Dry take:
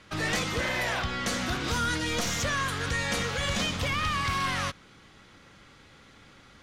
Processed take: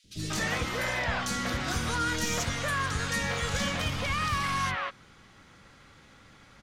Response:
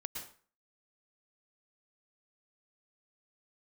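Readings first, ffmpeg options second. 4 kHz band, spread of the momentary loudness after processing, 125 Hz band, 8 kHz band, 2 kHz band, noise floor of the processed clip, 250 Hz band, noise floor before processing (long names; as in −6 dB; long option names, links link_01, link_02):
−2.5 dB, 2 LU, 0.0 dB, −0.5 dB, −1.0 dB, −56 dBFS, −1.0 dB, −55 dBFS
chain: -filter_complex "[0:a]acrossover=split=370|3300[link_01][link_02][link_03];[link_01]adelay=40[link_04];[link_02]adelay=190[link_05];[link_04][link_05][link_03]amix=inputs=3:normalize=0"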